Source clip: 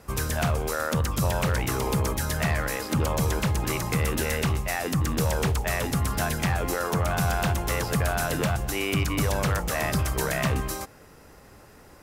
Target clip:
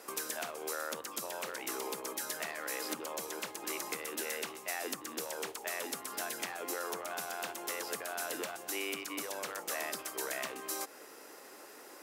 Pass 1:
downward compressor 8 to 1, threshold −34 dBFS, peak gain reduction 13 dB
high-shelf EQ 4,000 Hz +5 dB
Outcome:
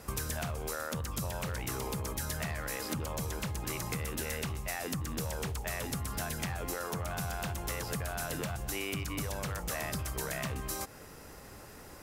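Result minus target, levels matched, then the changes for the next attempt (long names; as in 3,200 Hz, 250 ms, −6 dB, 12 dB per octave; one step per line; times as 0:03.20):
250 Hz band +5.0 dB
add after downward compressor: Chebyshev high-pass filter 320 Hz, order 3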